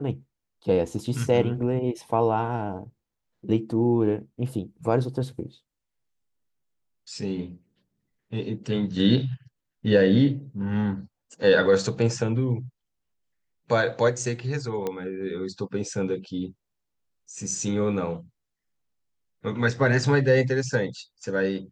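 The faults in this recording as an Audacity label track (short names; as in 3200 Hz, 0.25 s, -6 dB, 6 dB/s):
14.870000	14.870000	pop -16 dBFS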